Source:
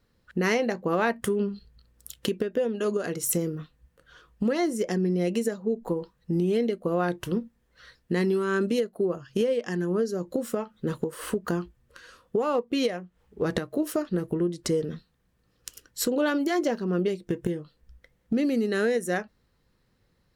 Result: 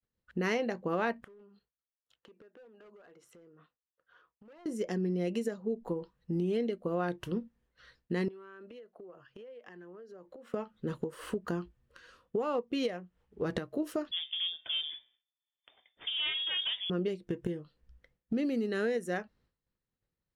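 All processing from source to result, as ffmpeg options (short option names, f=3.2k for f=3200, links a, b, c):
-filter_complex "[0:a]asettb=1/sr,asplit=3[a][b][c];[a]atrim=end=1.244[d];[b]atrim=start=1.24:end=4.66,asetpts=PTS-STARTPTS,afade=t=in:d=0.004:c=qsin,afade=t=out:st=3.416:d=0.004:c=qsin,bandpass=f=1k:t=q:w=0.94,volume=30dB,asoftclip=hard,volume=-30dB,acompressor=threshold=-48dB:ratio=8:attack=3.2:release=140:knee=1:detection=peak[e];[c]atrim=start=4.656[f];[d][e]acrossfade=d=0.004:c1=hsin:c2=qsin[g];[g][f]acrossfade=d=0.004:c1=qsin:c2=hsin,asettb=1/sr,asplit=3[h][i][j];[h]atrim=end=8.284[k];[i]atrim=start=8.28:end=10.54,asetpts=PTS-STARTPTS,afade=t=in:d=0.004:c=qsin,afade=t=out:st=2.256:d=0.004:c=qsin,acrossover=split=390 3200:gain=0.224 1 0.158[l][m][n];[l][m][n]amix=inputs=3:normalize=0,acompressor=threshold=-39dB:ratio=16:attack=3.2:release=140:knee=1:detection=peak[o];[j]atrim=start=10.536[p];[k][o]acrossfade=d=0.004:c1=hsin:c2=qsin[q];[q][p]acrossfade=d=0.004:c1=qsin:c2=hsin,asettb=1/sr,asplit=3[r][s][t];[r]atrim=end=14.114[u];[s]atrim=start=14.11:end=16.9,asetpts=PTS-STARTPTS,afade=t=in:d=0.004:c=qsin,afade=t=out:st=2.786:d=0.004:c=qsin,aeval=exprs='clip(val(0),-1,0.0447)':c=same,bandreject=f=124.1:t=h:w=4,bandreject=f=248.2:t=h:w=4,bandreject=f=372.3:t=h:w=4,bandreject=f=496.4:t=h:w=4,bandreject=f=620.5:t=h:w=4,bandreject=f=744.6:t=h:w=4,bandreject=f=868.7:t=h:w=4,bandreject=f=992.8:t=h:w=4,bandreject=f=1.1169k:t=h:w=4,bandreject=f=1.241k:t=h:w=4,bandreject=f=1.3651k:t=h:w=4,bandreject=f=1.4892k:t=h:w=4,bandreject=f=1.6133k:t=h:w=4,bandreject=f=1.7374k:t=h:w=4,bandreject=f=1.8615k:t=h:w=4,bandreject=f=1.9856k:t=h:w=4,bandreject=f=2.1097k:t=h:w=4,bandreject=f=2.2338k:t=h:w=4,bandreject=f=2.3579k:t=h:w=4,bandreject=f=2.482k:t=h:w=4,bandreject=f=2.6061k:t=h:w=4,bandreject=f=2.7302k:t=h:w=4,bandreject=f=2.8543k:t=h:w=4,bandreject=f=2.9784k:t=h:w=4,bandreject=f=3.1025k:t=h:w=4,bandreject=f=3.2266k:t=h:w=4,bandreject=f=3.3507k:t=h:w=4,bandreject=f=3.4748k:t=h:w=4,bandreject=f=3.5989k:t=h:w=4,lowpass=f=3.1k:t=q:w=0.5098,lowpass=f=3.1k:t=q:w=0.6013,lowpass=f=3.1k:t=q:w=0.9,lowpass=f=3.1k:t=q:w=2.563,afreqshift=-3600[v];[t]atrim=start=16.896[w];[u][v]acrossfade=d=0.004:c1=hsin:c2=qsin[x];[x][w]acrossfade=d=0.004:c1=qsin:c2=hsin,highshelf=f=7.1k:g=-10,agate=range=-33dB:threshold=-58dB:ratio=3:detection=peak,equalizer=f=2.9k:t=o:w=0.26:g=2.5,volume=-6.5dB"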